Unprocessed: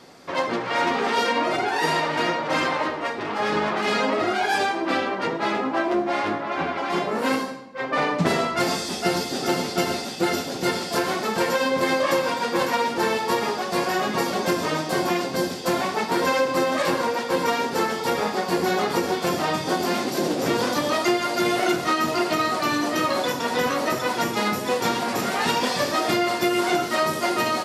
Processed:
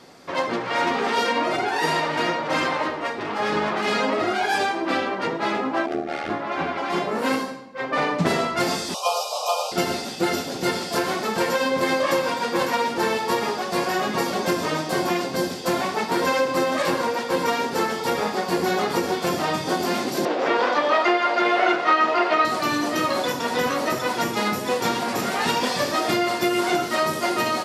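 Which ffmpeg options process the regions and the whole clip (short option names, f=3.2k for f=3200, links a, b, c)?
-filter_complex "[0:a]asettb=1/sr,asplit=3[a][b][c];[a]atrim=end=5.864[d];[b]atrim=start=5.86:end=6.3,asetpts=PTS-STARTPTS,afade=t=in:d=0.004:c=qsin,afade=t=out:st=0.436:d=0.004:c=qsin,tremolo=f=79:d=0.947,asuperstop=centerf=1000:order=12:qfactor=4.6[e];[c]atrim=start=6.296[f];[d][e]acrossfade=d=0.004:c1=hsin:c2=qsin[g];[g][f]acrossfade=d=0.004:c1=qsin:c2=hsin,asettb=1/sr,asplit=3[h][i][j];[h]atrim=end=8.944[k];[i]atrim=start=8.94:end=9.72,asetpts=PTS-STARTPTS,afade=t=in:d=0.004:c=qsin,afade=t=out:st=0.776:d=0.004:c=qsin,afreqshift=340,asuperstop=centerf=1800:order=12:qfactor=1.7[l];[j]atrim=start=9.716[m];[k][l]acrossfade=d=0.004:c1=hsin:c2=qsin[n];[n][m]acrossfade=d=0.004:c1=qsin:c2=hsin,asettb=1/sr,asplit=3[o][p][q];[o]atrim=end=20.254[r];[p]atrim=start=20.25:end=22.45,asetpts=PTS-STARTPTS,afade=t=in:d=0.004:c=qsin,afade=t=out:st=2.196:d=0.004:c=qsin,highpass=510,lowpass=2.5k,acontrast=52[s];[q]atrim=start=22.446[t];[r][s]acrossfade=d=0.004:c1=hsin:c2=qsin[u];[u][t]acrossfade=d=0.004:c1=qsin:c2=hsin"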